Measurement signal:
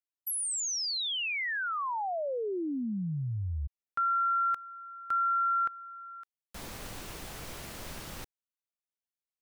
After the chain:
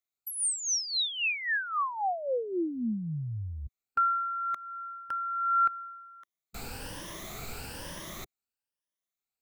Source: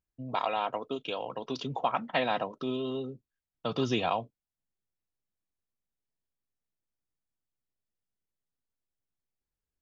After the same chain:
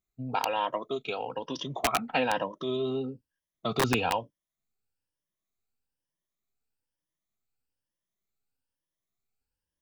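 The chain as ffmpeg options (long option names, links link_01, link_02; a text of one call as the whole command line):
ffmpeg -i in.wav -filter_complex "[0:a]afftfilt=real='re*pow(10,12/40*sin(2*PI*(1.2*log(max(b,1)*sr/1024/100)/log(2)-(1.1)*(pts-256)/sr)))':imag='im*pow(10,12/40*sin(2*PI*(1.2*log(max(b,1)*sr/1024/100)/log(2)-(1.1)*(pts-256)/sr)))':win_size=1024:overlap=0.75,acrossover=split=1400[link_01][link_02];[link_01]aeval=exprs='(mod(7.5*val(0)+1,2)-1)/7.5':channel_layout=same[link_03];[link_03][link_02]amix=inputs=2:normalize=0" out.wav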